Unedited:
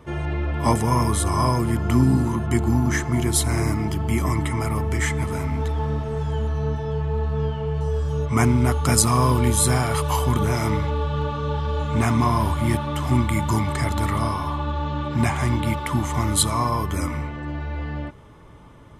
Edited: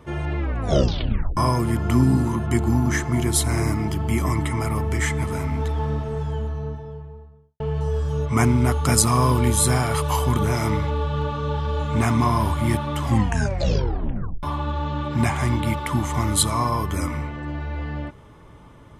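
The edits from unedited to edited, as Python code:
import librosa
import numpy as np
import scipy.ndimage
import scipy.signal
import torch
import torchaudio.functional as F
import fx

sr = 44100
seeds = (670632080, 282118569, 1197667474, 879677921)

y = fx.studio_fade_out(x, sr, start_s=5.83, length_s=1.77)
y = fx.edit(y, sr, fx.tape_stop(start_s=0.38, length_s=0.99),
    fx.tape_stop(start_s=13.03, length_s=1.4), tone=tone)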